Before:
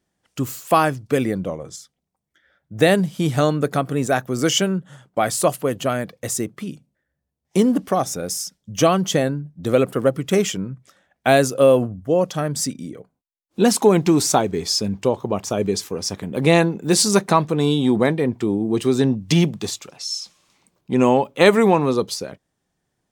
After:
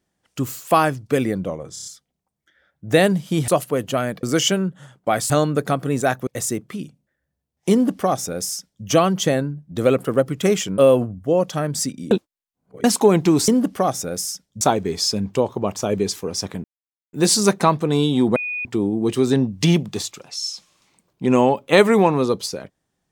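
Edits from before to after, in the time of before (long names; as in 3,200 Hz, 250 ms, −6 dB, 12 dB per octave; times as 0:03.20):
0:01.73: stutter 0.03 s, 5 plays
0:03.36–0:04.33: swap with 0:05.40–0:06.15
0:07.60–0:08.73: duplicate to 0:14.29
0:10.66–0:11.59: remove
0:12.92–0:13.65: reverse
0:16.32–0:16.81: silence
0:18.04–0:18.33: beep over 2,470 Hz −23.5 dBFS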